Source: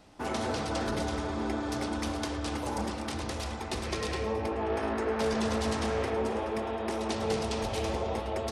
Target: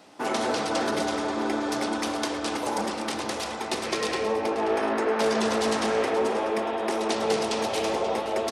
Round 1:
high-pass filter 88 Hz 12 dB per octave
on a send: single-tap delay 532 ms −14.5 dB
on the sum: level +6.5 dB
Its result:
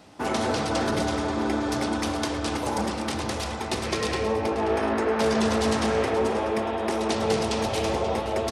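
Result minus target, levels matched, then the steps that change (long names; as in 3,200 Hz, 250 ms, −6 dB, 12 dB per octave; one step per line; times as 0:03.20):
125 Hz band +10.0 dB
change: high-pass filter 250 Hz 12 dB per octave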